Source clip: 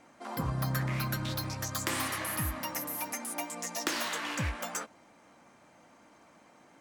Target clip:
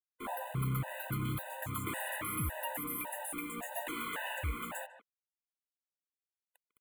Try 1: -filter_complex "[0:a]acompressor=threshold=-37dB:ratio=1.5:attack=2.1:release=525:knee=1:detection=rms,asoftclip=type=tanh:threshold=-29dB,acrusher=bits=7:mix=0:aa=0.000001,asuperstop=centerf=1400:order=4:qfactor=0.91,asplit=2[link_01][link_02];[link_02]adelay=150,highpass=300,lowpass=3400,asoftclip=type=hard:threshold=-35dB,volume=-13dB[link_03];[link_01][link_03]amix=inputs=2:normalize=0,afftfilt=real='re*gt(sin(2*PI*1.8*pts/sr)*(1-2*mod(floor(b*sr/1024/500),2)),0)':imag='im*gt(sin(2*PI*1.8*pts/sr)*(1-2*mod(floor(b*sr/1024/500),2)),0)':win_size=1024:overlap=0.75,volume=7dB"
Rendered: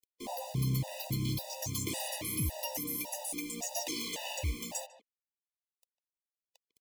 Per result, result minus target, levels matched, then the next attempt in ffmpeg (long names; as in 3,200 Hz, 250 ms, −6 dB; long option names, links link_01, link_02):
1,000 Hz band −6.5 dB; soft clipping: distortion −9 dB
-filter_complex "[0:a]acompressor=threshold=-37dB:ratio=1.5:attack=2.1:release=525:knee=1:detection=rms,asoftclip=type=tanh:threshold=-29dB,acrusher=bits=7:mix=0:aa=0.000001,asuperstop=centerf=5400:order=4:qfactor=0.91,asplit=2[link_01][link_02];[link_02]adelay=150,highpass=300,lowpass=3400,asoftclip=type=hard:threshold=-35dB,volume=-13dB[link_03];[link_01][link_03]amix=inputs=2:normalize=0,afftfilt=real='re*gt(sin(2*PI*1.8*pts/sr)*(1-2*mod(floor(b*sr/1024/500),2)),0)':imag='im*gt(sin(2*PI*1.8*pts/sr)*(1-2*mod(floor(b*sr/1024/500),2)),0)':win_size=1024:overlap=0.75,volume=7dB"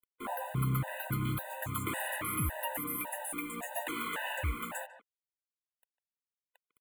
soft clipping: distortion −9 dB
-filter_complex "[0:a]acompressor=threshold=-37dB:ratio=1.5:attack=2.1:release=525:knee=1:detection=rms,asoftclip=type=tanh:threshold=-37dB,acrusher=bits=7:mix=0:aa=0.000001,asuperstop=centerf=5400:order=4:qfactor=0.91,asplit=2[link_01][link_02];[link_02]adelay=150,highpass=300,lowpass=3400,asoftclip=type=hard:threshold=-35dB,volume=-13dB[link_03];[link_01][link_03]amix=inputs=2:normalize=0,afftfilt=real='re*gt(sin(2*PI*1.8*pts/sr)*(1-2*mod(floor(b*sr/1024/500),2)),0)':imag='im*gt(sin(2*PI*1.8*pts/sr)*(1-2*mod(floor(b*sr/1024/500),2)),0)':win_size=1024:overlap=0.75,volume=7dB"